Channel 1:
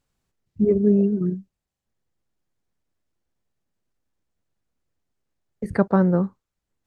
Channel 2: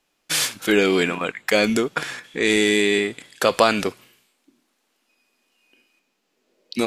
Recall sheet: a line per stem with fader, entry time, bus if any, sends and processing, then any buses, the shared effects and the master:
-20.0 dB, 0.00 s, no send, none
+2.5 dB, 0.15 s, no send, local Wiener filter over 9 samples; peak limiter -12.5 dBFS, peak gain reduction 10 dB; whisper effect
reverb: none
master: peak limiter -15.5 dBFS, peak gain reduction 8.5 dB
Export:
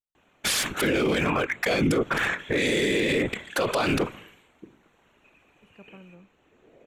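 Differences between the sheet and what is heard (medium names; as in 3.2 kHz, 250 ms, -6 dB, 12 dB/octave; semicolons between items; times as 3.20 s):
stem 1 -20.0 dB -> -31.0 dB; stem 2 +2.5 dB -> +11.0 dB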